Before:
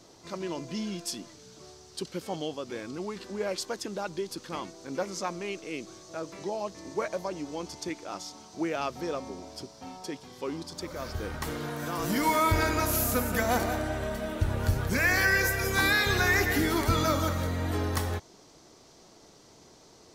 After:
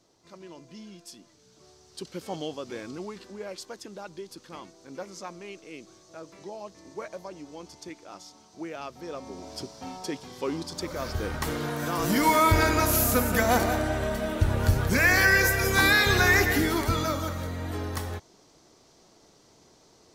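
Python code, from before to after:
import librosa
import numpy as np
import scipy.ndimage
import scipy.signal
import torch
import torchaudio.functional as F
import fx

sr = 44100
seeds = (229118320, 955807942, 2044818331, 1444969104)

y = fx.gain(x, sr, db=fx.line((1.18, -11.0), (2.33, 0.0), (2.9, 0.0), (3.43, -6.5), (9.01, -6.5), (9.56, 4.0), (16.35, 4.0), (17.21, -3.0)))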